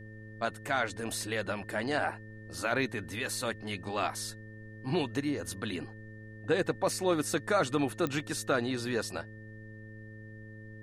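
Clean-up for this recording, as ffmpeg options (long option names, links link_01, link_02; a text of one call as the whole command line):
ffmpeg -i in.wav -af "adeclick=threshold=4,bandreject=frequency=108.2:width_type=h:width=4,bandreject=frequency=216.4:width_type=h:width=4,bandreject=frequency=324.6:width_type=h:width=4,bandreject=frequency=432.8:width_type=h:width=4,bandreject=frequency=541:width_type=h:width=4,bandreject=frequency=1800:width=30,agate=range=-21dB:threshold=-39dB" out.wav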